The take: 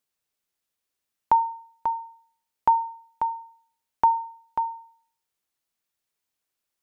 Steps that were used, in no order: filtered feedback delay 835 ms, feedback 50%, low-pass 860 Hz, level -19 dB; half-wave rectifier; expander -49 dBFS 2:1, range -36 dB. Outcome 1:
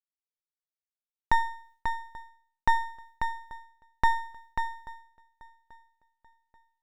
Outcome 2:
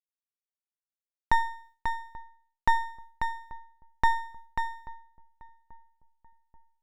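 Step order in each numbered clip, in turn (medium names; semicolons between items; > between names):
expander > filtered feedback delay > half-wave rectifier; half-wave rectifier > expander > filtered feedback delay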